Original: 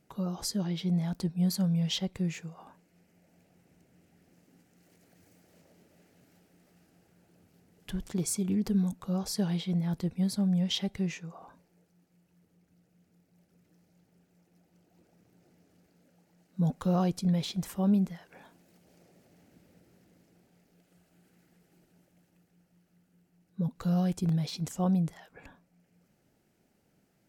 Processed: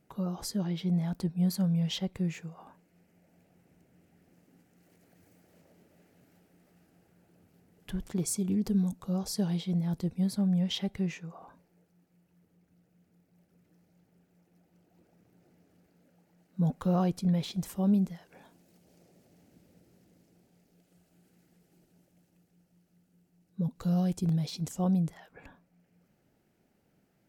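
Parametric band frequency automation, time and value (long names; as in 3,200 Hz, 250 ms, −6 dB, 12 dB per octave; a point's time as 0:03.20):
parametric band −4.5 dB 2 octaves
5,600 Hz
from 0:08.25 1,900 Hz
from 0:10.25 6,100 Hz
from 0:17.51 1,600 Hz
from 0:25.10 7,500 Hz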